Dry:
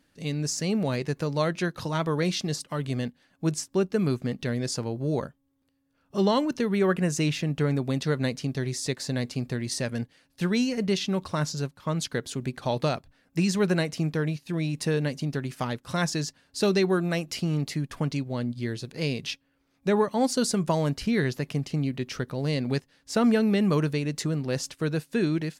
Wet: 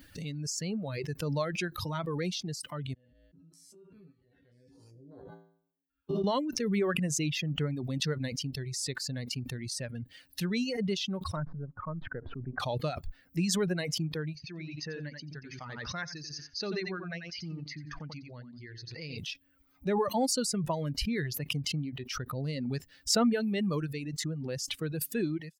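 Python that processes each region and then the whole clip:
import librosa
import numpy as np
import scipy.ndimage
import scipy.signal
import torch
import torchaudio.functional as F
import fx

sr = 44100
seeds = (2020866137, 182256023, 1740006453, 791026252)

y = fx.chain(x, sr, fx.spec_steps(hold_ms=200),
    fx.peak_eq(hz=6800.0, db=-6.5, octaves=0.7),
    fx.comb_fb(f0_hz=56.0, decay_s=0.86, harmonics='odd', damping=0.0, mix_pct=90), at=(2.94, 6.24))
y = fx.chain(y, sr, fx.halfwave_gain(db=-3.0),
    fx.lowpass(hz=1500.0, slope=24), at=(11.36, 12.6))
y = fx.chain(y, sr, fx.cheby_ripple(hz=6500.0, ripple_db=6),
    fx.echo_feedback(ms=88, feedback_pct=21, wet_db=-5.0), at=(14.35, 19.18))
y = fx.bin_expand(y, sr, power=1.5)
y = fx.dereverb_blind(y, sr, rt60_s=0.73)
y = fx.pre_swell(y, sr, db_per_s=21.0)
y = y * librosa.db_to_amplitude(-4.0)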